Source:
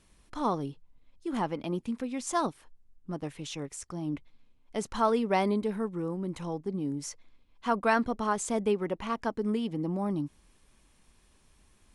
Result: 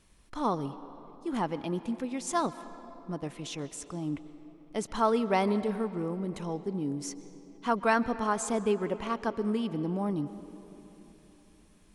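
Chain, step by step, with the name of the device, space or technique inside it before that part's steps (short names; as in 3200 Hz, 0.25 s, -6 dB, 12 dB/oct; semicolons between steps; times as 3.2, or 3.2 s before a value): filtered reverb send (on a send: HPF 220 Hz + LPF 7300 Hz 12 dB/oct + reverb RT60 3.6 s, pre-delay 0.118 s, DRR 13.5 dB)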